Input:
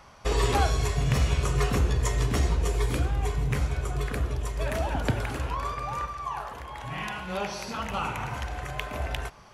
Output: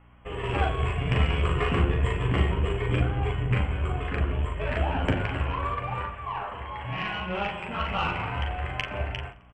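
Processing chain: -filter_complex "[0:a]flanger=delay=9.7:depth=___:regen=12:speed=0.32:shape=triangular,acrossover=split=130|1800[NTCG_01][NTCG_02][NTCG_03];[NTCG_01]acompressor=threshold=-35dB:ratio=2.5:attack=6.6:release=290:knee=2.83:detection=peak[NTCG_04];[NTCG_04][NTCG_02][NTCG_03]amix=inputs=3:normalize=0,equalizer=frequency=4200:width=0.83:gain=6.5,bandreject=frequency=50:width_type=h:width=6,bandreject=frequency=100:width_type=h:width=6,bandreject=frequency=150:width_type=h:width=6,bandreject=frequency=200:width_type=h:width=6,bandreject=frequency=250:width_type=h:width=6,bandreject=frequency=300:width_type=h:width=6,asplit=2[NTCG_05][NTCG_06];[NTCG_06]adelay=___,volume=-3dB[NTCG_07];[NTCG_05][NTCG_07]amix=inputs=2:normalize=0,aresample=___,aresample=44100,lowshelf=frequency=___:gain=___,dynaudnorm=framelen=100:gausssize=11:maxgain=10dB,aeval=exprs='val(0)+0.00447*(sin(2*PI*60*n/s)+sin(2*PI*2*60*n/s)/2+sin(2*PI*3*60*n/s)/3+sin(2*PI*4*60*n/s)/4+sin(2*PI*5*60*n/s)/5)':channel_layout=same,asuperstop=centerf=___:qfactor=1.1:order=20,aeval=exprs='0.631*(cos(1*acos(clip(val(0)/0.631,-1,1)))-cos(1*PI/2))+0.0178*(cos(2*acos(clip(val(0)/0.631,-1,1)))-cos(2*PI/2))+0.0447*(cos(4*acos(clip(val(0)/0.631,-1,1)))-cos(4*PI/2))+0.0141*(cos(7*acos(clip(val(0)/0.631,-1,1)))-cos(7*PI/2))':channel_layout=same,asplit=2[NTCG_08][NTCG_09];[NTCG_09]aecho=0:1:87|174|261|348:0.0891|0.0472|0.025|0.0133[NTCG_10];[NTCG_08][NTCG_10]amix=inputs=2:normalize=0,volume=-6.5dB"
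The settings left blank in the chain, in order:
2.1, 40, 16000, 260, 6.5, 5100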